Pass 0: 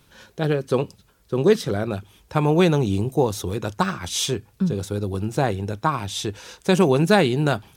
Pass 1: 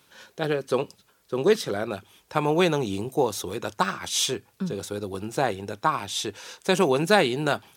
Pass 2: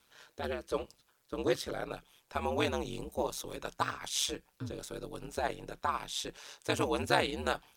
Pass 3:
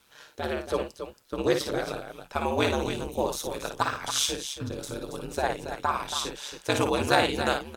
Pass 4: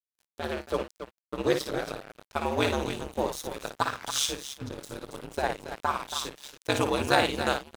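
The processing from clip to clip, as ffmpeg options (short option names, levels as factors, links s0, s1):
-af "highpass=f=430:p=1"
-af "aeval=exprs='val(0)*sin(2*PI*70*n/s)':c=same,equalizer=f=230:w=0.8:g=-5,volume=0.562"
-af "aecho=1:1:55|277:0.473|0.355,volume=1.88"
-af "aeval=exprs='sgn(val(0))*max(abs(val(0))-0.0112,0)':c=same"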